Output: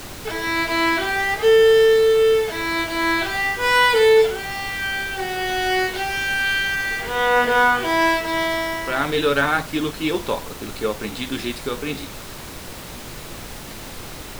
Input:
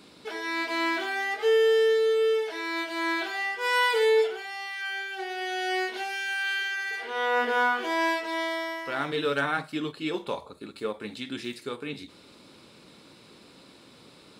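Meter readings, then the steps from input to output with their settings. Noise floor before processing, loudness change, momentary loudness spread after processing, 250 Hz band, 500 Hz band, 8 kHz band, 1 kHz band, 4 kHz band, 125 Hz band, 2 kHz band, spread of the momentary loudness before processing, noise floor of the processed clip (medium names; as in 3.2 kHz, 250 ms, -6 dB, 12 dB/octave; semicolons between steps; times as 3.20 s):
-53 dBFS, +8.0 dB, 20 LU, +8.5 dB, +8.0 dB, +12.5 dB, +8.0 dB, +8.5 dB, +12.5 dB, +8.0 dB, 14 LU, -36 dBFS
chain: added noise pink -43 dBFS; trim +8 dB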